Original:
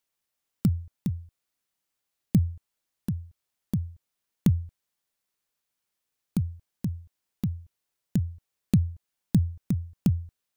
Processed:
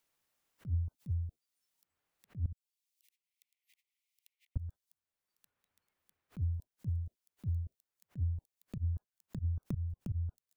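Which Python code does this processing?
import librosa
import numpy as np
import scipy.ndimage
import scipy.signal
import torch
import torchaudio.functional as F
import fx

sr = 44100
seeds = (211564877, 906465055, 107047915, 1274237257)

y = fx.noise_reduce_blind(x, sr, reduce_db=25)
y = fx.over_compress(y, sr, threshold_db=-28.0, ratio=-0.5)
y = fx.echo_wet_highpass(y, sr, ms=1179, feedback_pct=65, hz=4900.0, wet_db=-20)
y = fx.auto_swell(y, sr, attack_ms=188.0)
y = fx.steep_highpass(y, sr, hz=2000.0, slope=96, at=(2.52, 4.56))
y = fx.band_squash(y, sr, depth_pct=70)
y = y * librosa.db_to_amplitude(4.0)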